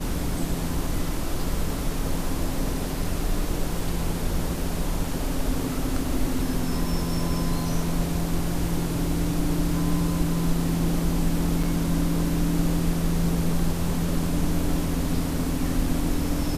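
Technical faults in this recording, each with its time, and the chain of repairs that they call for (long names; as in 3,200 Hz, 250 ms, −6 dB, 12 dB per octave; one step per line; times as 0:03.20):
0:11.63: drop-out 5 ms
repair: repair the gap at 0:11.63, 5 ms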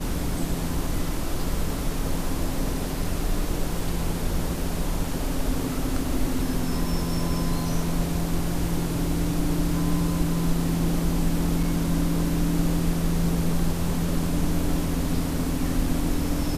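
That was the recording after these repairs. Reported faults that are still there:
none of them is left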